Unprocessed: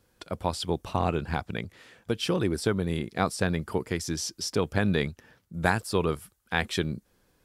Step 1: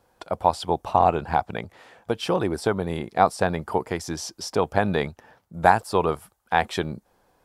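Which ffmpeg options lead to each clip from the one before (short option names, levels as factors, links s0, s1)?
-af "equalizer=f=790:w=1.1:g=14.5,volume=0.841"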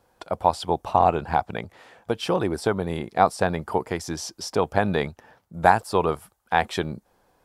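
-af anull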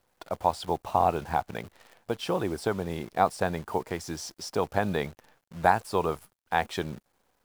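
-af "acrusher=bits=8:dc=4:mix=0:aa=0.000001,volume=0.562"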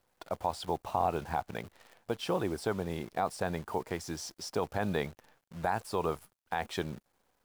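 -af "alimiter=limit=0.178:level=0:latency=1:release=46,volume=0.708"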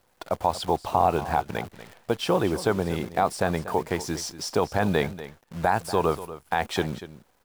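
-af "aecho=1:1:239:0.188,volume=2.66"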